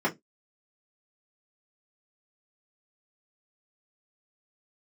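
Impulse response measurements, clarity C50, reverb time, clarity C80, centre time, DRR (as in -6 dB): 20.0 dB, 0.15 s, 33.0 dB, 11 ms, -7.0 dB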